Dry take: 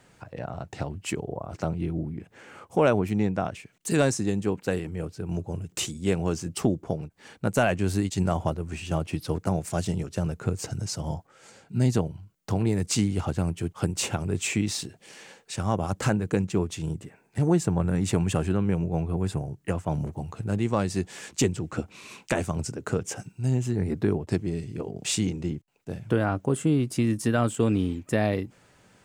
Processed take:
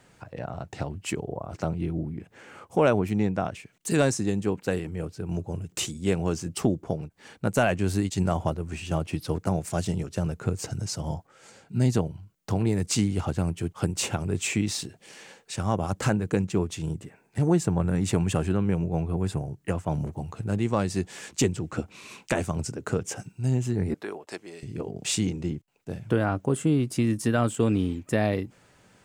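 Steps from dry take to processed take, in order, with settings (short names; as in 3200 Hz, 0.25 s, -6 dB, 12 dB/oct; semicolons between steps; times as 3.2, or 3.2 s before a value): 23.94–24.63 HPF 640 Hz 12 dB/oct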